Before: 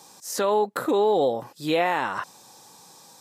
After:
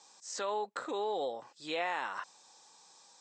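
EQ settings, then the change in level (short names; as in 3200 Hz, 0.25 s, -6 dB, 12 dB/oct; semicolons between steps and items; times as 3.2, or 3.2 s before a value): HPF 850 Hz 6 dB/oct; steep low-pass 8200 Hz 96 dB/oct; -8.0 dB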